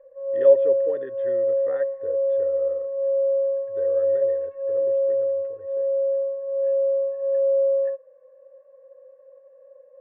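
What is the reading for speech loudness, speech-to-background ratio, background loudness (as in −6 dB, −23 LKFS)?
−28.0 LKFS, −4.5 dB, −23.5 LKFS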